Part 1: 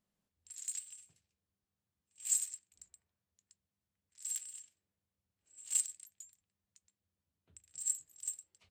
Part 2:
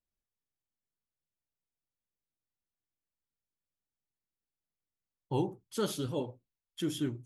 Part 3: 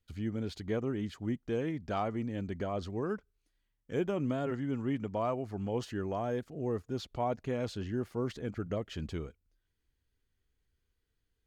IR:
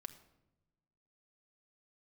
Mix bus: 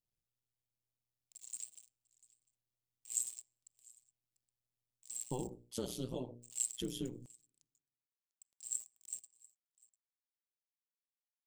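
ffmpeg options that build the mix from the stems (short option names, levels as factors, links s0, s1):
-filter_complex "[0:a]highpass=390,acrusher=bits=7:mix=0:aa=0.5,adelay=850,volume=0.708,asplit=3[s0][s1][s2];[s1]volume=0.562[s3];[s2]volume=0.0841[s4];[1:a]bandreject=f=60:t=h:w=6,bandreject=f=120:t=h:w=6,bandreject=f=180:t=h:w=6,bandreject=f=240:t=h:w=6,bandreject=f=300:t=h:w=6,bandreject=f=360:t=h:w=6,bandreject=f=420:t=h:w=6,bandreject=f=480:t=h:w=6,acompressor=threshold=0.0178:ratio=6,volume=1.33,asplit=2[s5][s6];[s6]volume=0.0944[s7];[3:a]atrim=start_sample=2205[s8];[s3][s7]amix=inputs=2:normalize=0[s9];[s9][s8]afir=irnorm=-1:irlink=0[s10];[s4]aecho=0:1:697:1[s11];[s0][s5][s10][s11]amix=inputs=4:normalize=0,tremolo=f=120:d=0.919,equalizer=f=1500:w=1.5:g=-12"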